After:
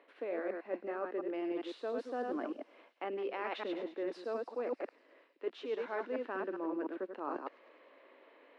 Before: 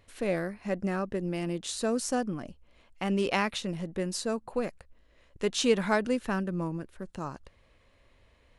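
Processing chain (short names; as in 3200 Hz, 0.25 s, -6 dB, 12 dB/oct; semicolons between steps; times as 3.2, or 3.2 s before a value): reverse delay 0.101 s, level -6.5 dB; steep high-pass 280 Hz 48 dB/oct; high shelf 4200 Hz -8.5 dB; reverse; compressor 10:1, threshold -42 dBFS, peak gain reduction 22 dB; reverse; air absorption 390 m; thin delay 0.104 s, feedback 72%, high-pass 4700 Hz, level -6.5 dB; gain +8.5 dB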